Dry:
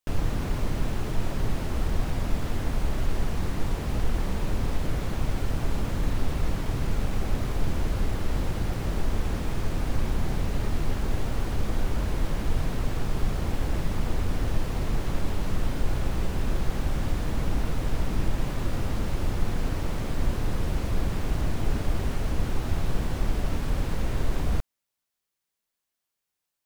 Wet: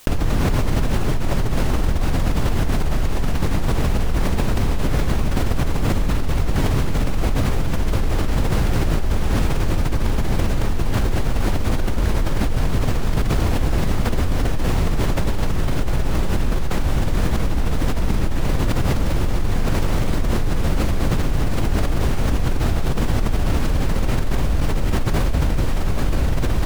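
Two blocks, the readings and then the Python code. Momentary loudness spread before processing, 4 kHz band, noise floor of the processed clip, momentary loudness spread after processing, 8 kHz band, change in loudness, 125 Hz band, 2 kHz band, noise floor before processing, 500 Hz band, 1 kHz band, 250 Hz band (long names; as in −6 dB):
1 LU, +9.0 dB, −20 dBFS, 2 LU, +9.0 dB, +8.0 dB, +8.5 dB, +9.0 dB, −84 dBFS, +9.0 dB, +9.0 dB, +9.0 dB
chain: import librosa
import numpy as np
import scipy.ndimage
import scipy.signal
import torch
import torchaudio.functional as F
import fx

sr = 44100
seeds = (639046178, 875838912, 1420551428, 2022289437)

p1 = x + fx.echo_diffused(x, sr, ms=825, feedback_pct=67, wet_db=-8, dry=0)
p2 = fx.env_flatten(p1, sr, amount_pct=100)
y = F.gain(torch.from_numpy(p2), -2.0).numpy()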